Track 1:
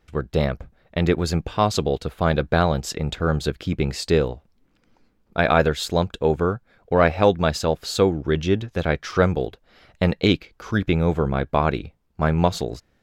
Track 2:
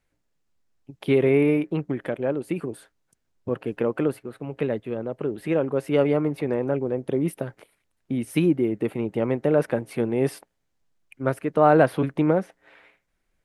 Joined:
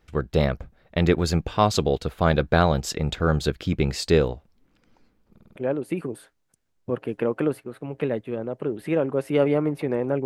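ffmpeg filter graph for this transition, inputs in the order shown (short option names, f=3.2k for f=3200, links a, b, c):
-filter_complex "[0:a]apad=whole_dur=10.25,atrim=end=10.25,asplit=5[a][b][c][d][e];[a]atrim=end=5.362[f];[b]atrim=start=5.308:end=5.362[g];[c]atrim=start=5.308:end=5.362[h];[d]atrim=start=5.308:end=5.362[i];[e]atrim=start=5.308:end=5.362[j];[1:a]atrim=start=2.148:end=6.84[k];[f][g]acrossfade=d=0.004:c1=hsin:c2=hsin[l];[l][h]acrossfade=d=0.004:c1=hsin:c2=hsin[m];[m][i]acrossfade=d=0.004:c1=hsin:c2=hsin[n];[n][j]acrossfade=d=0.004:c1=hsin:c2=hsin[o];[o][k]acrossfade=d=0.004:c1=hsin:c2=hsin"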